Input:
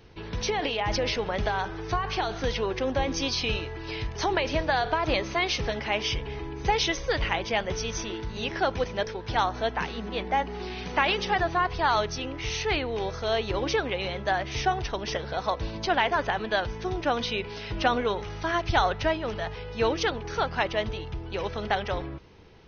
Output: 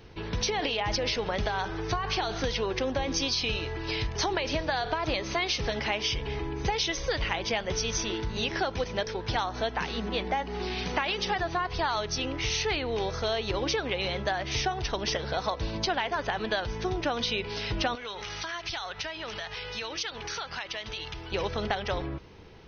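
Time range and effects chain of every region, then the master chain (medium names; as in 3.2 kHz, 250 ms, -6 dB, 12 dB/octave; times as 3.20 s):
17.95–21.32 s: tilt shelf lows -8.5 dB, about 920 Hz + compression, threshold -36 dBFS
whole clip: dynamic bell 4.8 kHz, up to +5 dB, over -46 dBFS, Q 1; compression, threshold -28 dBFS; trim +2.5 dB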